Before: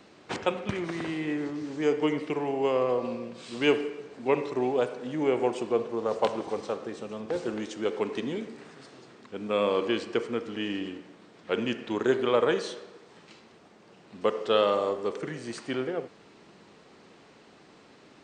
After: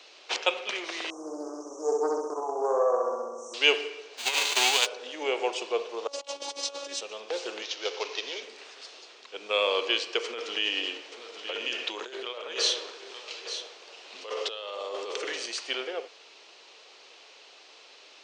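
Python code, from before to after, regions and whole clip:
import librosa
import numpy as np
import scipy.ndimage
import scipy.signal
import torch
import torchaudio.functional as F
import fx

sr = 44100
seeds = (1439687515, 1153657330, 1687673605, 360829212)

y = fx.chain(x, sr, fx.brickwall_bandstop(low_hz=1300.0, high_hz=5600.0),
    fx.room_flutter(wall_m=11.0, rt60_s=1.2),
    fx.doppler_dist(depth_ms=0.16), at=(1.1, 3.54))
y = fx.envelope_flatten(y, sr, power=0.3, at=(4.17, 4.85), fade=0.02)
y = fx.peak_eq(y, sr, hz=5400.0, db=-10.5, octaves=0.22, at=(4.17, 4.85), fade=0.02)
y = fx.over_compress(y, sr, threshold_db=-26.0, ratio=-0.5, at=(4.17, 4.85), fade=0.02)
y = fx.chain(y, sr, fx.bass_treble(bass_db=9, treble_db=10),
    fx.over_compress(threshold_db=-34.0, ratio=-0.5),
    fx.robotise(hz=281.0), at=(6.07, 7.01))
y = fx.chain(y, sr, fx.cvsd(bps=32000),
    fx.highpass(hz=370.0, slope=12), at=(7.62, 8.43))
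y = fx.chain(y, sr, fx.over_compress(threshold_db=-33.0, ratio=-1.0),
    fx.echo_single(ms=878, db=-10.0), at=(10.24, 15.46))
y = scipy.signal.sosfilt(scipy.signal.butter(4, 450.0, 'highpass', fs=sr, output='sos'), y)
y = fx.band_shelf(y, sr, hz=4000.0, db=10.5, octaves=1.7)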